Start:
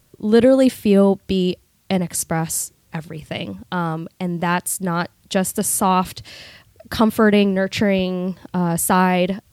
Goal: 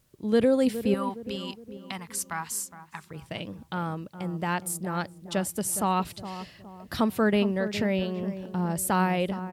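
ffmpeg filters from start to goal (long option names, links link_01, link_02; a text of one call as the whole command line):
ffmpeg -i in.wav -filter_complex "[0:a]asettb=1/sr,asplit=3[link_01][link_02][link_03];[link_01]atrim=end=0.944[link_04];[link_02]atrim=start=0.94:end=3.11,asetpts=PTS-STARTPTS,afade=type=in:duration=0.004:curve=qsin,afade=type=out:start_time=2.166:duration=0.004:curve=qsin,lowshelf=frequency=740:width_type=q:width=3:gain=-11[link_05];[link_03]atrim=start=3.106[link_06];[link_04][link_05]acrossfade=duration=0.004:curve1=hsin:curve2=qsin[link_07];[link_07][link_06]acrossfade=duration=0.004:curve1=qsin:curve2=hsin,asplit=2[link_08][link_09];[link_09]adelay=414,lowpass=frequency=890:poles=1,volume=-10.5dB,asplit=2[link_10][link_11];[link_11]adelay=414,lowpass=frequency=890:poles=1,volume=0.47,asplit=2[link_12][link_13];[link_13]adelay=414,lowpass=frequency=890:poles=1,volume=0.47,asplit=2[link_14][link_15];[link_15]adelay=414,lowpass=frequency=890:poles=1,volume=0.47,asplit=2[link_16][link_17];[link_17]adelay=414,lowpass=frequency=890:poles=1,volume=0.47[link_18];[link_08][link_10][link_12][link_14][link_16][link_18]amix=inputs=6:normalize=0,volume=-9dB" out.wav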